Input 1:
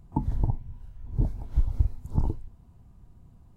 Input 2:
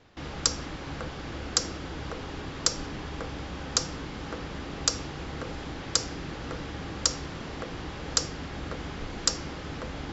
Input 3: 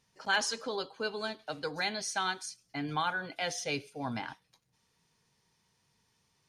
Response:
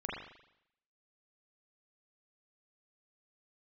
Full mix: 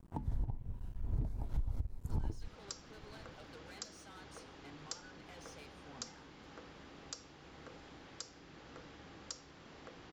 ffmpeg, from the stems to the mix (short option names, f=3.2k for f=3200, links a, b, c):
-filter_complex "[0:a]acompressor=threshold=-24dB:ratio=6,aeval=exprs='sgn(val(0))*max(abs(val(0))-0.00316,0)':c=same,volume=3dB[a];[1:a]lowshelf=f=130:g=-9,adelay=2250,volume=-15.5dB[b];[2:a]alimiter=level_in=3.5dB:limit=-24dB:level=0:latency=1:release=432,volume=-3.5dB,asoftclip=type=tanh:threshold=-40dB,adelay=1900,volume=-12dB[c];[a][b][c]amix=inputs=3:normalize=0,alimiter=level_in=2.5dB:limit=-24dB:level=0:latency=1:release=461,volume=-2.5dB"